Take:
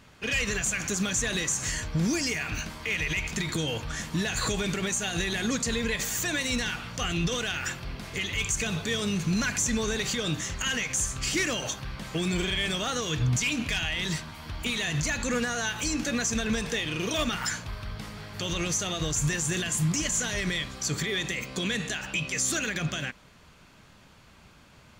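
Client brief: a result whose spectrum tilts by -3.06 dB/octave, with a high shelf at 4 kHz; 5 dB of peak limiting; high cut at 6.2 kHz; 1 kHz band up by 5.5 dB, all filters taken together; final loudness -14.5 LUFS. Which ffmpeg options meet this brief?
-af "lowpass=6200,equalizer=f=1000:t=o:g=7,highshelf=f=4000:g=3,volume=5.31,alimiter=limit=0.562:level=0:latency=1"

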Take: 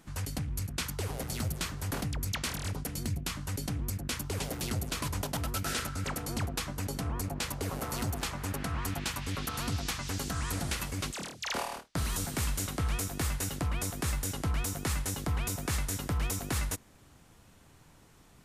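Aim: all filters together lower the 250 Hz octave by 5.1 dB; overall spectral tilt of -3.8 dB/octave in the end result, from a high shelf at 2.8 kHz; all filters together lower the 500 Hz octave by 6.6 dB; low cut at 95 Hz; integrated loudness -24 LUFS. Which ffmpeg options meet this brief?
-af "highpass=95,equalizer=f=250:t=o:g=-5,equalizer=f=500:t=o:g=-7,highshelf=f=2800:g=-4.5,volume=5.01"

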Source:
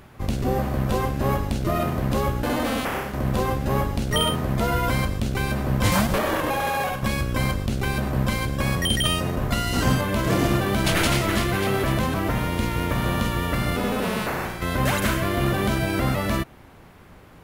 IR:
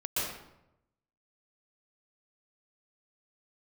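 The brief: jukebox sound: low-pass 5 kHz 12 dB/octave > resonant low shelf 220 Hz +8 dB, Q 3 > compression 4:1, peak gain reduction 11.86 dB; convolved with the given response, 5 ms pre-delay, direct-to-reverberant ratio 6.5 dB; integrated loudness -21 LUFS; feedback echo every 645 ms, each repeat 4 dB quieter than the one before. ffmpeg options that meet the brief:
-filter_complex "[0:a]aecho=1:1:645|1290|1935|2580|3225|3870|4515|5160|5805:0.631|0.398|0.25|0.158|0.0994|0.0626|0.0394|0.0249|0.0157,asplit=2[s0][s1];[1:a]atrim=start_sample=2205,adelay=5[s2];[s1][s2]afir=irnorm=-1:irlink=0,volume=0.211[s3];[s0][s3]amix=inputs=2:normalize=0,lowpass=5000,lowshelf=f=220:t=q:w=3:g=8,acompressor=threshold=0.112:ratio=4,volume=1.19"

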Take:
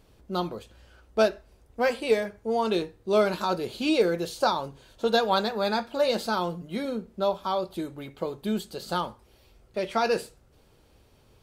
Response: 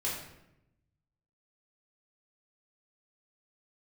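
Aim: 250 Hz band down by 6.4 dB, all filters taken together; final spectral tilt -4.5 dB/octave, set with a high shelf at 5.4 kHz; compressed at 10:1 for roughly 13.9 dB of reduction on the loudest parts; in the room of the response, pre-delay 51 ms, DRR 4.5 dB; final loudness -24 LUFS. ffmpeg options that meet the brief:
-filter_complex "[0:a]equalizer=f=250:t=o:g=-9,highshelf=f=5400:g=-3.5,acompressor=threshold=0.0224:ratio=10,asplit=2[s0][s1];[1:a]atrim=start_sample=2205,adelay=51[s2];[s1][s2]afir=irnorm=-1:irlink=0,volume=0.335[s3];[s0][s3]amix=inputs=2:normalize=0,volume=4.73"

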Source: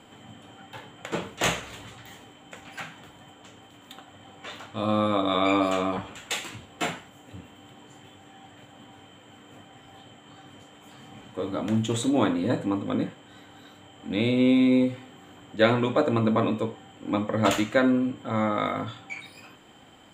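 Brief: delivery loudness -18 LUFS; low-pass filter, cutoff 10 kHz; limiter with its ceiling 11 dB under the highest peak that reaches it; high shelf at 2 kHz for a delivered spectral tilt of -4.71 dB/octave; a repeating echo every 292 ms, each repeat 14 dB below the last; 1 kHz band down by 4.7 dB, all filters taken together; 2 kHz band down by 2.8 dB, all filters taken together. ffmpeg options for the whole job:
-af "lowpass=10000,equalizer=f=1000:t=o:g=-6.5,highshelf=f=2000:g=7.5,equalizer=f=2000:t=o:g=-6.5,alimiter=limit=0.158:level=0:latency=1,aecho=1:1:292|584:0.2|0.0399,volume=3.35"

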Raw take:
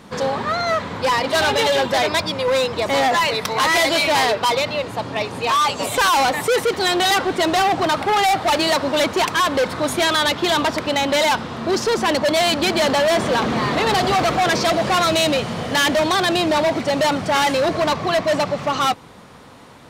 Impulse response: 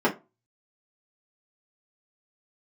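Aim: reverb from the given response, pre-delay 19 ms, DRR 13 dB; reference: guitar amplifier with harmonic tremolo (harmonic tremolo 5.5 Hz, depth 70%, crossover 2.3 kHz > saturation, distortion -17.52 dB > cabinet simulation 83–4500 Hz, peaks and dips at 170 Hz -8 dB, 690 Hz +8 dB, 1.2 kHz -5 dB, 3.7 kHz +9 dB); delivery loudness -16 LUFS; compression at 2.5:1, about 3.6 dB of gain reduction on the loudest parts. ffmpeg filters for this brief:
-filter_complex "[0:a]acompressor=threshold=0.0891:ratio=2.5,asplit=2[s0][s1];[1:a]atrim=start_sample=2205,adelay=19[s2];[s1][s2]afir=irnorm=-1:irlink=0,volume=0.0376[s3];[s0][s3]amix=inputs=2:normalize=0,acrossover=split=2300[s4][s5];[s4]aeval=exprs='val(0)*(1-0.7/2+0.7/2*cos(2*PI*5.5*n/s))':c=same[s6];[s5]aeval=exprs='val(0)*(1-0.7/2-0.7/2*cos(2*PI*5.5*n/s))':c=same[s7];[s6][s7]amix=inputs=2:normalize=0,asoftclip=threshold=0.106,highpass=83,equalizer=f=170:t=q:w=4:g=-8,equalizer=f=690:t=q:w=4:g=8,equalizer=f=1200:t=q:w=4:g=-5,equalizer=f=3700:t=q:w=4:g=9,lowpass=f=4500:w=0.5412,lowpass=f=4500:w=1.3066,volume=2.51"

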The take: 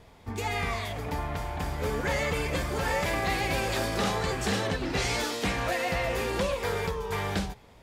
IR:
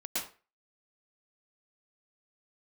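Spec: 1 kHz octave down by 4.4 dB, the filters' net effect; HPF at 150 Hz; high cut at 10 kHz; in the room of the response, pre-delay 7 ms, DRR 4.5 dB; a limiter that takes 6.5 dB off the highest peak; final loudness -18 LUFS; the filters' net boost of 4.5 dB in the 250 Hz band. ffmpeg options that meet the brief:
-filter_complex "[0:a]highpass=150,lowpass=10000,equalizer=f=250:t=o:g=7.5,equalizer=f=1000:t=o:g=-6.5,alimiter=limit=0.0891:level=0:latency=1,asplit=2[s0][s1];[1:a]atrim=start_sample=2205,adelay=7[s2];[s1][s2]afir=irnorm=-1:irlink=0,volume=0.376[s3];[s0][s3]amix=inputs=2:normalize=0,volume=3.76"

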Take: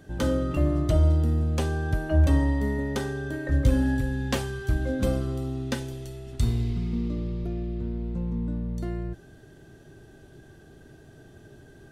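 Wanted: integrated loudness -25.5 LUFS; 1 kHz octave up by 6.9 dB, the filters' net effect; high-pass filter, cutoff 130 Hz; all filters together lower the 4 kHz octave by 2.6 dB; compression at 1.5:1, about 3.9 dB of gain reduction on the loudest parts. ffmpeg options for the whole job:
-af "highpass=130,equalizer=f=1000:t=o:g=9,equalizer=f=4000:t=o:g=-4,acompressor=threshold=0.0282:ratio=1.5,volume=2.11"

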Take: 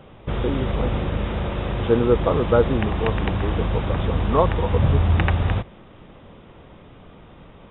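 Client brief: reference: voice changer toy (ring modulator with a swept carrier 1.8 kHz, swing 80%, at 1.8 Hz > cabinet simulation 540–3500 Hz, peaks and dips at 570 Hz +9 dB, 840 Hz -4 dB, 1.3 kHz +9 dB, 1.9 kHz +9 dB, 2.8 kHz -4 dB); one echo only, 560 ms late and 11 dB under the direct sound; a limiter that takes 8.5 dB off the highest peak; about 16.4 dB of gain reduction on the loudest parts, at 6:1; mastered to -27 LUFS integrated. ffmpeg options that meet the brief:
-af "acompressor=threshold=0.0282:ratio=6,alimiter=level_in=1.33:limit=0.0631:level=0:latency=1,volume=0.75,aecho=1:1:560:0.282,aeval=exprs='val(0)*sin(2*PI*1800*n/s+1800*0.8/1.8*sin(2*PI*1.8*n/s))':c=same,highpass=540,equalizer=f=570:t=q:w=4:g=9,equalizer=f=840:t=q:w=4:g=-4,equalizer=f=1300:t=q:w=4:g=9,equalizer=f=1900:t=q:w=4:g=9,equalizer=f=2800:t=q:w=4:g=-4,lowpass=f=3500:w=0.5412,lowpass=f=3500:w=1.3066,volume=2.11"

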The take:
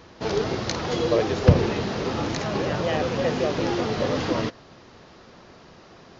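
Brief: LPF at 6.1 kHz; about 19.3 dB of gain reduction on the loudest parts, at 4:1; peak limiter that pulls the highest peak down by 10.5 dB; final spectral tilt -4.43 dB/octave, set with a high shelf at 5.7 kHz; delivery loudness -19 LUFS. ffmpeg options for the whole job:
-af "lowpass=6100,highshelf=f=5700:g=4.5,acompressor=threshold=0.0224:ratio=4,volume=10,alimiter=limit=0.355:level=0:latency=1"

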